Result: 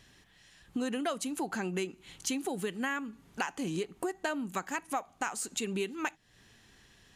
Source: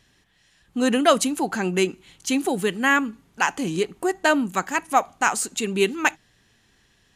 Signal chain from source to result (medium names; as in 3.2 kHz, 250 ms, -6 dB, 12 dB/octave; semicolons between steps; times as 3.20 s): compression 6:1, threshold -33 dBFS, peak gain reduction 20 dB; trim +1 dB